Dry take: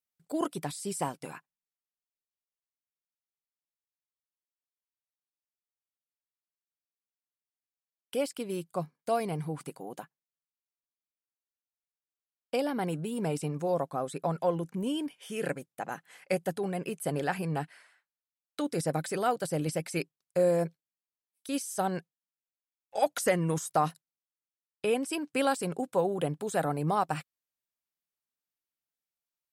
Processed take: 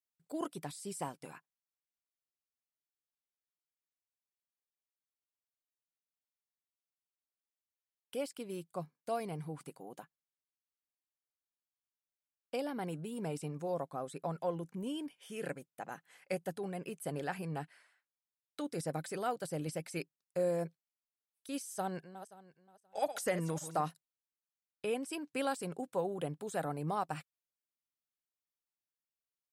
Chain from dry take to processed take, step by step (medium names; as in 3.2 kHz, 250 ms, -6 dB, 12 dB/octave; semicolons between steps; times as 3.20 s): 21.75–23.81 s: backward echo that repeats 264 ms, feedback 41%, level -12 dB; trim -7.5 dB